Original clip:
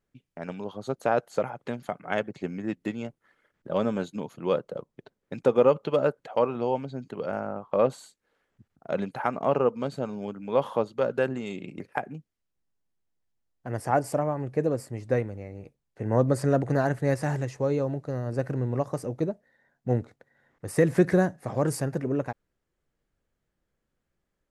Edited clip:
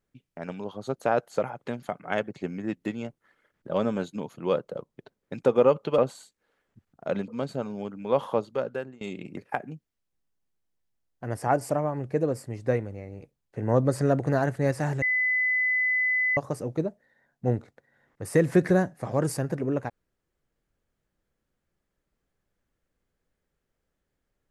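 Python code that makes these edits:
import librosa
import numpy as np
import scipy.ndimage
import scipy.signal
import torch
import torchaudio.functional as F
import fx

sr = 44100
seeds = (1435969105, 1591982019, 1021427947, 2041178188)

y = fx.edit(x, sr, fx.cut(start_s=5.98, length_s=1.83),
    fx.cut(start_s=9.11, length_s=0.6),
    fx.fade_out_to(start_s=10.84, length_s=0.6, floor_db=-24.0),
    fx.bleep(start_s=17.45, length_s=1.35, hz=2010.0, db=-21.5), tone=tone)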